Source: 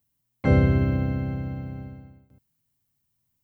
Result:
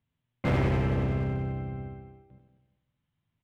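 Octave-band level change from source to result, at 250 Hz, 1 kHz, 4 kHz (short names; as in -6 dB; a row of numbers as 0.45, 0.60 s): -6.0 dB, 0.0 dB, n/a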